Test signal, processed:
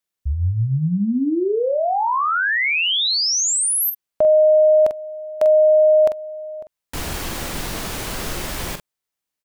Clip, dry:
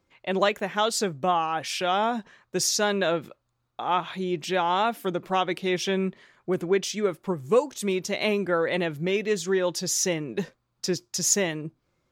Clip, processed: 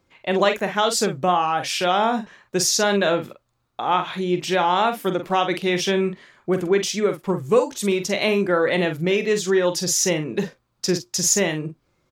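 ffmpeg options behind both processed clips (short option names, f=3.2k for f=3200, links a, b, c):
-filter_complex "[0:a]asplit=2[a][b];[b]adelay=45,volume=-8.5dB[c];[a][c]amix=inputs=2:normalize=0,asplit=2[d][e];[e]alimiter=limit=-16dB:level=0:latency=1:release=136,volume=-2dB[f];[d][f]amix=inputs=2:normalize=0"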